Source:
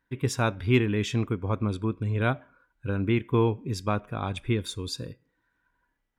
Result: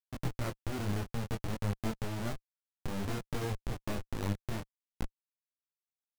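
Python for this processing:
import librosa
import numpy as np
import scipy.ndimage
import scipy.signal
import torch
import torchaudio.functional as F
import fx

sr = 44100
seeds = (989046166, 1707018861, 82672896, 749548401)

y = scipy.signal.sosfilt(scipy.signal.butter(2, 1500.0, 'lowpass', fs=sr, output='sos'), x)
y = fx.schmitt(y, sr, flips_db=-27.5)
y = fx.power_curve(y, sr, exponent=2.0)
y = fx.detune_double(y, sr, cents=20)
y = F.gain(torch.from_numpy(y), 3.0).numpy()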